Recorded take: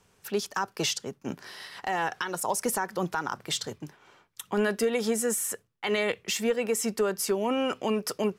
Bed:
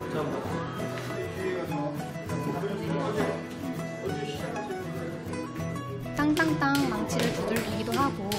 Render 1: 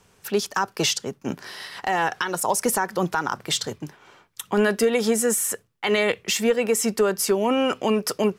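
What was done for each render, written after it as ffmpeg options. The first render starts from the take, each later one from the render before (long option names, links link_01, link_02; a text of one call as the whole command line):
ffmpeg -i in.wav -af "volume=6dB" out.wav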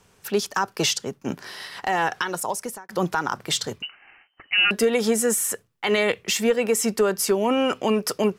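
ffmpeg -i in.wav -filter_complex "[0:a]asettb=1/sr,asplit=3[link_01][link_02][link_03];[link_01]atrim=end=3.824[link_04];[link_02]atrim=start=3.82:end=4.71,asetpts=PTS-STARTPTS,afade=type=in:duration=0.004:curve=qsin,afade=type=out:start_time=0.886:duration=0.004:curve=qsin,lowpass=frequency=2600:width_type=q:width=0.5098,lowpass=frequency=2600:width_type=q:width=0.6013,lowpass=frequency=2600:width_type=q:width=0.9,lowpass=frequency=2600:width_type=q:width=2.563,afreqshift=-3100[link_05];[link_03]atrim=start=4.706[link_06];[link_04][link_05]acrossfade=duration=0.004:curve1=hsin:curve2=qsin[link_07];[link_07][link_06]acrossfade=duration=0.004:curve1=qsin:curve2=hsin,asplit=2[link_08][link_09];[link_08]atrim=end=2.89,asetpts=PTS-STARTPTS,afade=type=out:start_time=2.22:duration=0.67[link_10];[link_09]atrim=start=2.89,asetpts=PTS-STARTPTS,afade=type=in:duration=0.004:curve=hsin[link_11];[link_10][link_11]concat=n=2:v=0:a=1" out.wav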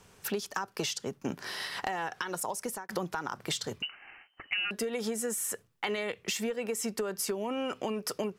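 ffmpeg -i in.wav -af "acompressor=threshold=-30dB:ratio=10" out.wav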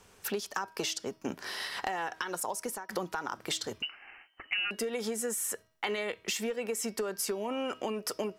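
ffmpeg -i in.wav -af "equalizer=frequency=140:width=1.8:gain=-8.5,bandreject=frequency=319.2:width_type=h:width=4,bandreject=frequency=638.4:width_type=h:width=4,bandreject=frequency=957.6:width_type=h:width=4,bandreject=frequency=1276.8:width_type=h:width=4,bandreject=frequency=1596:width_type=h:width=4,bandreject=frequency=1915.2:width_type=h:width=4,bandreject=frequency=2234.4:width_type=h:width=4,bandreject=frequency=2553.6:width_type=h:width=4,bandreject=frequency=2872.8:width_type=h:width=4,bandreject=frequency=3192:width_type=h:width=4,bandreject=frequency=3511.2:width_type=h:width=4,bandreject=frequency=3830.4:width_type=h:width=4,bandreject=frequency=4149.6:width_type=h:width=4,bandreject=frequency=4468.8:width_type=h:width=4,bandreject=frequency=4788:width_type=h:width=4,bandreject=frequency=5107.2:width_type=h:width=4,bandreject=frequency=5426.4:width_type=h:width=4,bandreject=frequency=5745.6:width_type=h:width=4" out.wav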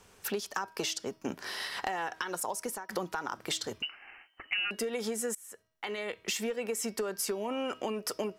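ffmpeg -i in.wav -filter_complex "[0:a]asplit=2[link_01][link_02];[link_01]atrim=end=5.35,asetpts=PTS-STARTPTS,afade=type=out:start_time=5.346:duration=0.004:curve=hsin:silence=0.0668344[link_03];[link_02]atrim=start=5.35,asetpts=PTS-STARTPTS,afade=type=in:duration=0.93:silence=0.0668344[link_04];[link_03][link_04]concat=n=2:v=0:a=1" out.wav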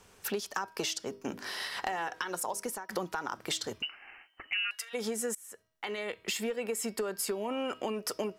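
ffmpeg -i in.wav -filter_complex "[0:a]asettb=1/sr,asplit=3[link_01][link_02][link_03];[link_01]atrim=end=1.024[link_04];[link_02]atrim=start=1.02:end=2.65,asetpts=PTS-STARTPTS,afade=type=in:duration=0.004:curve=qsin,afade=type=out:start_time=1.626:duration=0.004:curve=qsin,bandreject=frequency=50:width_type=h:width=6,bandreject=frequency=100:width_type=h:width=6,bandreject=frequency=150:width_type=h:width=6,bandreject=frequency=200:width_type=h:width=6,bandreject=frequency=250:width_type=h:width=6,bandreject=frequency=300:width_type=h:width=6,bandreject=frequency=350:width_type=h:width=6,bandreject=frequency=400:width_type=h:width=6,bandreject=frequency=450:width_type=h:width=6,bandreject=frequency=500:width_type=h:width=6[link_05];[link_03]atrim=start=2.646[link_06];[link_04][link_05]acrossfade=duration=0.004:curve1=hsin:curve2=qsin[link_07];[link_07][link_06]acrossfade=duration=0.004:curve1=qsin:curve2=hsin,asplit=3[link_08][link_09][link_10];[link_08]afade=type=out:start_time=4.52:duration=0.02[link_11];[link_09]highpass=frequency=1200:width=0.5412,highpass=frequency=1200:width=1.3066,afade=type=in:start_time=4.52:duration=0.02,afade=type=out:start_time=4.93:duration=0.02[link_12];[link_10]afade=type=in:start_time=4.93:duration=0.02[link_13];[link_11][link_12][link_13]amix=inputs=3:normalize=0,asettb=1/sr,asplit=3[link_14][link_15][link_16];[link_14]atrim=end=6.154[link_17];[link_15]atrim=start=6.15:end=7.93,asetpts=PTS-STARTPTS,afade=type=in:duration=0.004:curve=qsin,afade=type=out:start_time=1.776:duration=0.004:curve=qsin,bandreject=frequency=5900:width=6.5[link_18];[link_16]atrim=start=7.926[link_19];[link_17][link_18]acrossfade=duration=0.004:curve1=hsin:curve2=qsin[link_20];[link_20][link_19]acrossfade=duration=0.004:curve1=qsin:curve2=hsin" out.wav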